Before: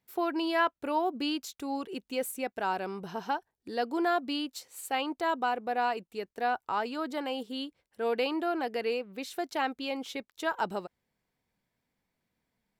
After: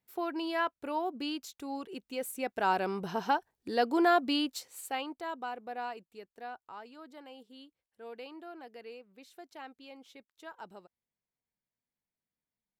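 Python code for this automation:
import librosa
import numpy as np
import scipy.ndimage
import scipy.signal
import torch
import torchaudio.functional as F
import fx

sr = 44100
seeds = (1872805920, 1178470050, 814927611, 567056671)

y = fx.gain(x, sr, db=fx.line((2.19, -4.5), (2.7, 3.0), (4.49, 3.0), (5.24, -9.0), (5.82, -9.0), (6.83, -16.0)))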